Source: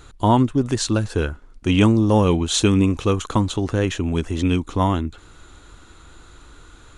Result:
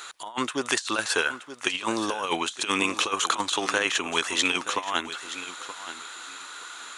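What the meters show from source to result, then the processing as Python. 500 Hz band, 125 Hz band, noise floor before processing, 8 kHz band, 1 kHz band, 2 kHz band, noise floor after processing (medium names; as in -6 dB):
-9.0 dB, -28.0 dB, -47 dBFS, 0.0 dB, -3.5 dB, +6.0 dB, -43 dBFS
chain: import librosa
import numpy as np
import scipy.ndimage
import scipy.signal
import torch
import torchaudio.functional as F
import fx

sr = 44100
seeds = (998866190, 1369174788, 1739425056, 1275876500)

p1 = scipy.signal.sosfilt(scipy.signal.butter(2, 1100.0, 'highpass', fs=sr, output='sos'), x)
p2 = fx.over_compress(p1, sr, threshold_db=-33.0, ratio=-0.5)
p3 = p2 + fx.echo_feedback(p2, sr, ms=925, feedback_pct=20, wet_db=-13.0, dry=0)
y = p3 * 10.0 ** (7.5 / 20.0)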